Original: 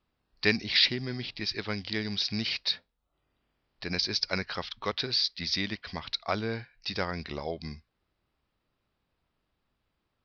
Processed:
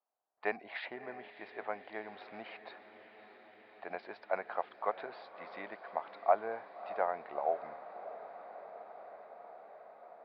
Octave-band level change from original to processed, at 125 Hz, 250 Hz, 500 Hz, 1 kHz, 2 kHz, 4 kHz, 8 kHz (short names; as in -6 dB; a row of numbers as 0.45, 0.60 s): under -25 dB, -17.0 dB, -0.5 dB, +3.5 dB, -10.5 dB, -29.5 dB, n/a